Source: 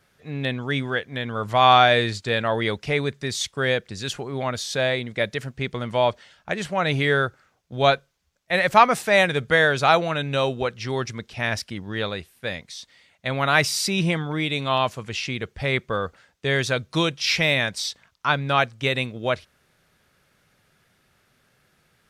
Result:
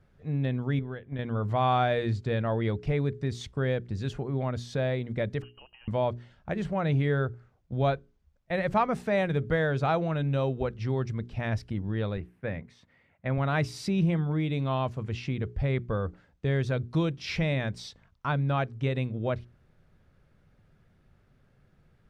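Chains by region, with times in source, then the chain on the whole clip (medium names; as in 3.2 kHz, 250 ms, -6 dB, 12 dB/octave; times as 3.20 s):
0.79–1.19 s: careless resampling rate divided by 6×, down none, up filtered + transient shaper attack +2 dB, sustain -6 dB + compression 5:1, threshold -31 dBFS
5.42–5.88 s: compression 16:1, threshold -39 dBFS + frequency inversion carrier 3 kHz
12.17–13.38 s: high-pass 92 Hz + resonant high shelf 2.9 kHz -8.5 dB, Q 1.5
whole clip: tilt EQ -4 dB/octave; hum notches 60/120/180/240/300/360/420 Hz; compression 1.5:1, threshold -24 dBFS; trim -6 dB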